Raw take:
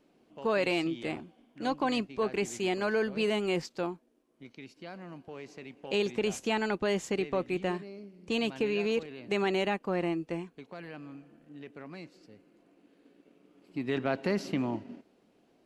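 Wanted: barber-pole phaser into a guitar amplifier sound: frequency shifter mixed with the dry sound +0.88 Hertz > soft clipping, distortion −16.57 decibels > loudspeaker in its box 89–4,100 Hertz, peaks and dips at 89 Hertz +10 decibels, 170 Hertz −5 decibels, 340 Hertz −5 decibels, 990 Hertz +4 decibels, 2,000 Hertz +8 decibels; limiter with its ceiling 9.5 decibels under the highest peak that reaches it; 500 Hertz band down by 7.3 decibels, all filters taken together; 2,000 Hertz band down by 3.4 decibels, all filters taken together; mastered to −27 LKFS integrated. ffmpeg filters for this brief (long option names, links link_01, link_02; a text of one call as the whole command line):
ffmpeg -i in.wav -filter_complex "[0:a]equalizer=frequency=500:width_type=o:gain=-7.5,equalizer=frequency=2000:width_type=o:gain=-8.5,alimiter=level_in=5.5dB:limit=-24dB:level=0:latency=1,volume=-5.5dB,asplit=2[link_01][link_02];[link_02]afreqshift=0.88[link_03];[link_01][link_03]amix=inputs=2:normalize=1,asoftclip=threshold=-36dB,highpass=89,equalizer=frequency=89:width_type=q:width=4:gain=10,equalizer=frequency=170:width_type=q:width=4:gain=-5,equalizer=frequency=340:width_type=q:width=4:gain=-5,equalizer=frequency=990:width_type=q:width=4:gain=4,equalizer=frequency=2000:width_type=q:width=4:gain=8,lowpass=frequency=4100:width=0.5412,lowpass=frequency=4100:width=1.3066,volume=19.5dB" out.wav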